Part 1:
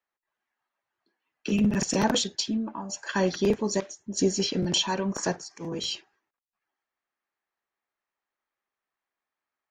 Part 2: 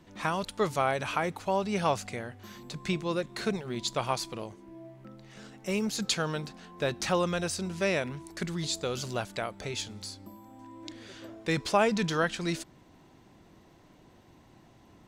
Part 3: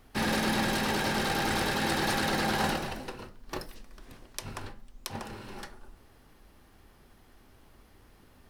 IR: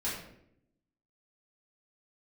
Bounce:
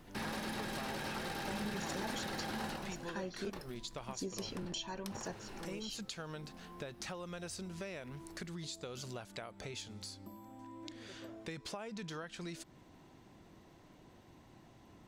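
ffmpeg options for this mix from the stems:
-filter_complex "[0:a]volume=-7.5dB,asplit=3[link_01][link_02][link_03];[link_01]atrim=end=3.5,asetpts=PTS-STARTPTS,afade=type=out:start_time=3.496:duration=0.004:curve=hsin[link_04];[link_02]atrim=start=3.5:end=4.01,asetpts=PTS-STARTPTS,volume=0[link_05];[link_03]atrim=start=4.01,asetpts=PTS-STARTPTS,afade=type=in:duration=0.004:curve=hsin[link_06];[link_04][link_05][link_06]concat=n=3:v=0:a=1[link_07];[1:a]acompressor=threshold=-32dB:ratio=6,volume=-2.5dB[link_08];[2:a]volume=-2.5dB[link_09];[link_07][link_08][link_09]amix=inputs=3:normalize=0,acompressor=threshold=-46dB:ratio=2"

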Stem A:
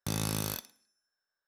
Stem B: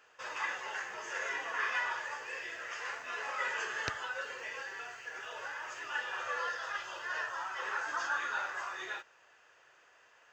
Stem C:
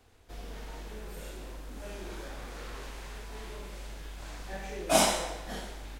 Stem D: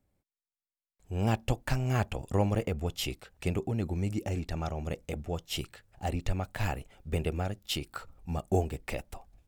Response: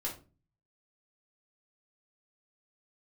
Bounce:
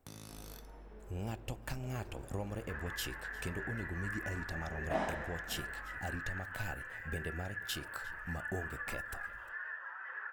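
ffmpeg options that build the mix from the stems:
-filter_complex "[0:a]highshelf=frequency=9600:gain=-10.5,acompressor=threshold=-40dB:ratio=2.5,volume=-13dB,asplit=2[link_01][link_02];[link_02]volume=-8dB[link_03];[1:a]acompressor=threshold=-49dB:ratio=4,lowpass=frequency=1700:width_type=q:width=5.6,adelay=2500,volume=-6dB,asplit=2[link_04][link_05];[link_05]volume=-9.5dB[link_06];[2:a]lowpass=1500,volume=-10dB[link_07];[3:a]acompressor=threshold=-41dB:ratio=2.5,volume=-2dB,asplit=3[link_08][link_09][link_10];[link_09]volume=-16.5dB[link_11];[link_10]volume=-19.5dB[link_12];[4:a]atrim=start_sample=2205[link_13];[link_03][link_11]amix=inputs=2:normalize=0[link_14];[link_14][link_13]afir=irnorm=-1:irlink=0[link_15];[link_06][link_12]amix=inputs=2:normalize=0,aecho=0:1:353:1[link_16];[link_01][link_04][link_07][link_08][link_15][link_16]amix=inputs=6:normalize=0,highshelf=frequency=7900:gain=8"

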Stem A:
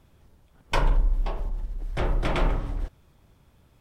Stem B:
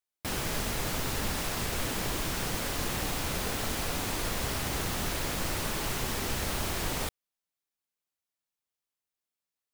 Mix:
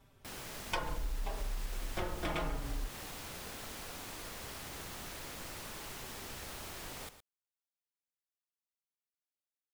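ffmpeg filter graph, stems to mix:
ffmpeg -i stem1.wav -i stem2.wav -filter_complex "[0:a]asplit=2[link_01][link_02];[link_02]adelay=4.6,afreqshift=-0.72[link_03];[link_01][link_03]amix=inputs=2:normalize=1,volume=1dB[link_04];[1:a]volume=-12dB,asplit=2[link_05][link_06];[link_06]volume=-12.5dB,aecho=0:1:115:1[link_07];[link_04][link_05][link_07]amix=inputs=3:normalize=0,lowshelf=frequency=340:gain=-5,acompressor=threshold=-34dB:ratio=3" out.wav

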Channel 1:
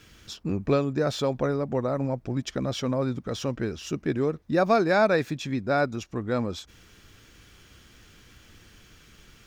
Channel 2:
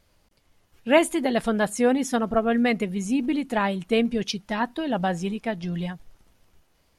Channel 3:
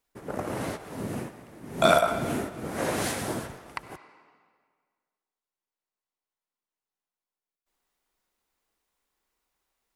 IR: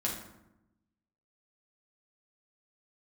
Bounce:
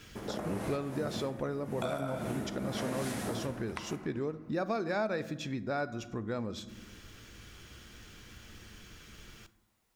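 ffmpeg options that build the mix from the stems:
-filter_complex "[0:a]volume=-0.5dB,asplit=2[link_01][link_02];[link_02]volume=-14.5dB[link_03];[2:a]acompressor=threshold=-28dB:ratio=6,volume=-0.5dB,asplit=2[link_04][link_05];[link_05]volume=-6dB[link_06];[3:a]atrim=start_sample=2205[link_07];[link_03][link_06]amix=inputs=2:normalize=0[link_08];[link_08][link_07]afir=irnorm=-1:irlink=0[link_09];[link_01][link_04][link_09]amix=inputs=3:normalize=0,acompressor=threshold=-40dB:ratio=2"

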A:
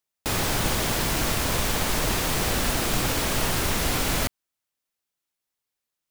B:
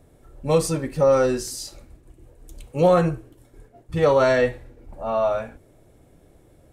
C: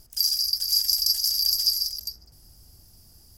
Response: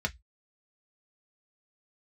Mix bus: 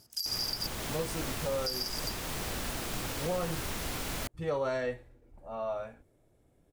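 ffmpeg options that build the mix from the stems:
-filter_complex "[0:a]volume=-11.5dB[link_01];[1:a]adelay=450,volume=-13.5dB[link_02];[2:a]highpass=140,highshelf=frequency=11000:gain=-10.5,volume=-1.5dB,asplit=3[link_03][link_04][link_05];[link_03]atrim=end=0.67,asetpts=PTS-STARTPTS,afade=type=out:start_time=0.666:duration=0.004:curve=hsin[link_06];[link_04]atrim=start=0.67:end=1.66,asetpts=PTS-STARTPTS,volume=0[link_07];[link_05]atrim=start=1.66,asetpts=PTS-STARTPTS,afade=type=in:duration=0.004:curve=hsin[link_08];[link_06][link_07][link_08]concat=n=3:v=0:a=1[link_09];[link_01][link_02][link_09]amix=inputs=3:normalize=0,alimiter=limit=-23dB:level=0:latency=1:release=235"

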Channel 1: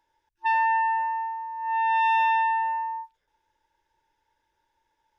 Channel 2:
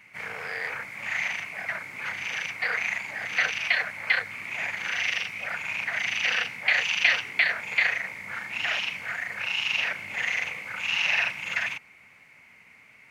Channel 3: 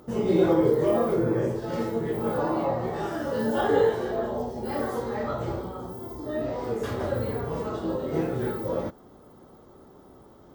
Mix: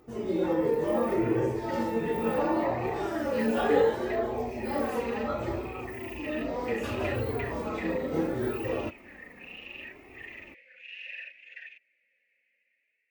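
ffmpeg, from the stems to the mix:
ffmpeg -i stem1.wav -i stem2.wav -i stem3.wav -filter_complex "[0:a]acompressor=threshold=-33dB:ratio=6,volume=-8.5dB[link_01];[1:a]equalizer=frequency=1000:width_type=o:width=1:gain=-12,equalizer=frequency=2000:width_type=o:width=1:gain=5,equalizer=frequency=4000:width_type=o:width=1:gain=5,acontrast=77,asplit=3[link_02][link_03][link_04];[link_02]bandpass=frequency=530:width_type=q:width=8,volume=0dB[link_05];[link_03]bandpass=frequency=1840:width_type=q:width=8,volume=-6dB[link_06];[link_04]bandpass=frequency=2480:width_type=q:width=8,volume=-9dB[link_07];[link_05][link_06][link_07]amix=inputs=3:normalize=0,volume=-19dB[link_08];[2:a]volume=-4dB[link_09];[link_01][link_08][link_09]amix=inputs=3:normalize=0,dynaudnorm=framelen=360:gausssize=5:maxgain=6dB,flanger=delay=2.5:depth=1.8:regen=-27:speed=0.69:shape=triangular" out.wav

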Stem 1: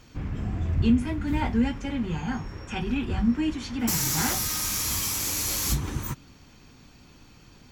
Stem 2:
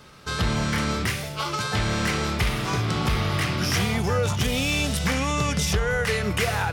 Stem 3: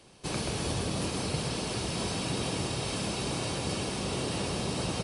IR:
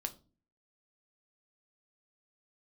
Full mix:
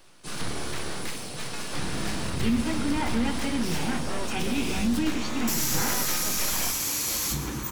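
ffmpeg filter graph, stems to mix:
-filter_complex "[0:a]adelay=1600,volume=-1.5dB,asplit=3[link_01][link_02][link_03];[link_02]volume=-5.5dB[link_04];[link_03]volume=-12dB[link_05];[1:a]aeval=exprs='abs(val(0))':channel_layout=same,volume=-11dB,asplit=2[link_06][link_07];[link_07]volume=-3.5dB[link_08];[2:a]highshelf=frequency=5800:gain=9.5,asoftclip=type=hard:threshold=-26.5dB,volume=-7dB[link_09];[link_01][link_09]amix=inputs=2:normalize=0,highpass=frequency=99:width=0.5412,highpass=frequency=99:width=1.3066,alimiter=limit=-23dB:level=0:latency=1,volume=0dB[link_10];[3:a]atrim=start_sample=2205[link_11];[link_04][link_08]amix=inputs=2:normalize=0[link_12];[link_12][link_11]afir=irnorm=-1:irlink=0[link_13];[link_05]aecho=0:1:138|276|414|552|690|828|966|1104|1242:1|0.59|0.348|0.205|0.121|0.0715|0.0422|0.0249|0.0147[link_14];[link_06][link_10][link_13][link_14]amix=inputs=4:normalize=0"

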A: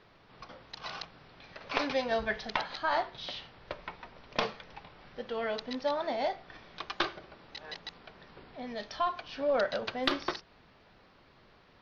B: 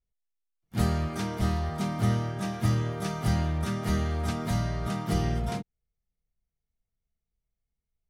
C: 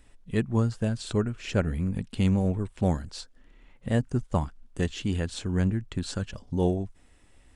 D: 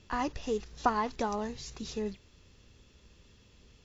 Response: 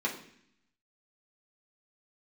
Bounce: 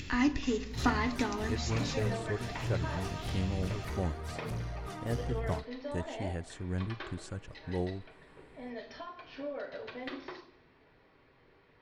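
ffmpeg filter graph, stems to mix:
-filter_complex "[0:a]acompressor=threshold=-35dB:ratio=4,volume=-6.5dB,asplit=2[link_01][link_02];[link_02]volume=-4.5dB[link_03];[1:a]aphaser=in_gain=1:out_gain=1:delay=3.3:decay=0.59:speed=1.1:type=triangular,asoftclip=type=tanh:threshold=-24dB,volume=-9dB[link_04];[2:a]equalizer=frequency=4200:width_type=o:width=1.3:gain=-6.5,adelay=1150,volume=-8.5dB[link_05];[3:a]equalizer=frequency=250:width_type=o:width=1:gain=7,equalizer=frequency=500:width_type=o:width=1:gain=-11,equalizer=frequency=1000:width_type=o:width=1:gain=-5,equalizer=frequency=2000:width_type=o:width=1:gain=5,equalizer=frequency=4000:width_type=o:width=1:gain=4,acompressor=mode=upward:threshold=-35dB:ratio=2.5,volume=2.5dB,asplit=2[link_06][link_07];[link_07]volume=-12dB[link_08];[4:a]atrim=start_sample=2205[link_09];[link_03][link_08]amix=inputs=2:normalize=0[link_10];[link_10][link_09]afir=irnorm=-1:irlink=0[link_11];[link_01][link_04][link_05][link_06][link_11]amix=inputs=5:normalize=0,equalizer=frequency=210:width=6.7:gain=-10.5"

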